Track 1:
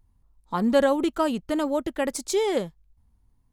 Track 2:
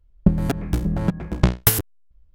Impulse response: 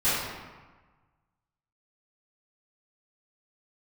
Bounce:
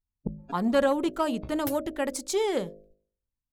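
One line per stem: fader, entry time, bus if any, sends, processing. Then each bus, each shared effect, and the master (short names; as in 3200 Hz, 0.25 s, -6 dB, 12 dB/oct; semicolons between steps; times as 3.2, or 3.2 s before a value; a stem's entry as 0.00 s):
-2.0 dB, 0.00 s, no send, gate -54 dBFS, range -23 dB
-4.0 dB, 0.00 s, no send, per-bin expansion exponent 3; auto duck -12 dB, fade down 0.55 s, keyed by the first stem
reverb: off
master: de-hum 51.97 Hz, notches 13; core saturation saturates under 500 Hz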